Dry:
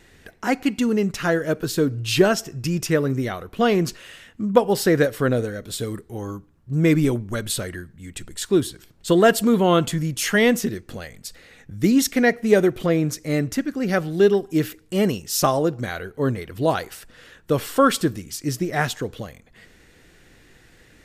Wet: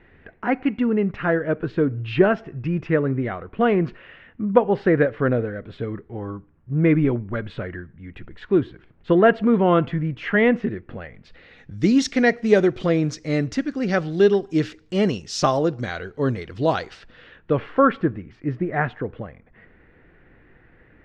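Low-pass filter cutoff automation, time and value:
low-pass filter 24 dB per octave
0:11.13 2,400 Hz
0:11.79 5,700 Hz
0:16.76 5,700 Hz
0:17.80 2,100 Hz

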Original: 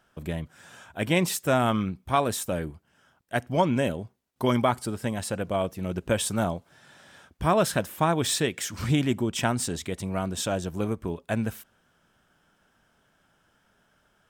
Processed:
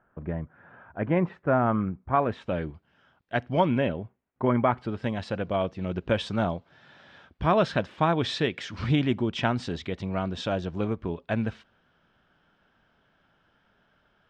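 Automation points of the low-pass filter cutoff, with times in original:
low-pass filter 24 dB per octave
0:02.10 1,700 Hz
0:02.62 4,200 Hz
0:03.51 4,200 Hz
0:04.53 1,900 Hz
0:05.04 4,300 Hz

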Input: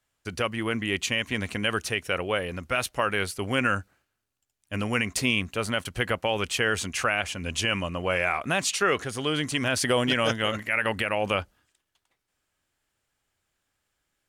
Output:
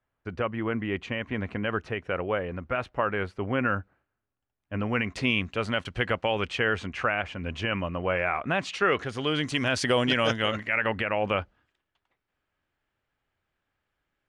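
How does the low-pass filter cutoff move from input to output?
0:04.74 1,600 Hz
0:05.34 3,700 Hz
0:06.22 3,700 Hz
0:06.95 2,100 Hz
0:08.38 2,100 Hz
0:09.55 5,600 Hz
0:10.41 5,600 Hz
0:10.91 2,600 Hz

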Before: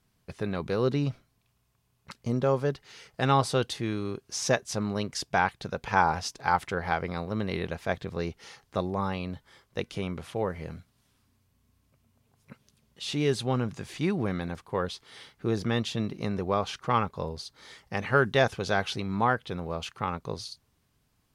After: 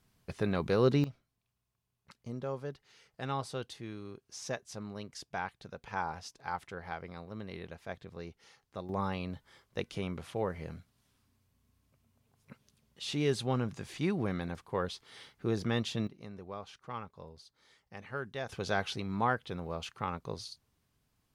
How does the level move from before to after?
0 dB
from 0:01.04 −12.5 dB
from 0:08.89 −4 dB
from 0:16.07 −16 dB
from 0:18.49 −5 dB

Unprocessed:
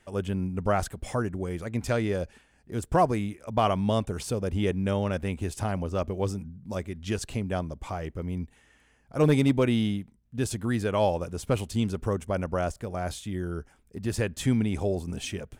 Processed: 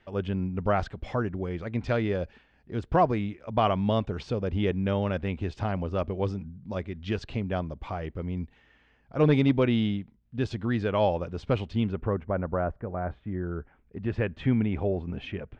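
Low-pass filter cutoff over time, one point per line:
low-pass filter 24 dB per octave
0:11.59 4,200 Hz
0:12.44 1,700 Hz
0:13.25 1,700 Hz
0:14.00 2,800 Hz

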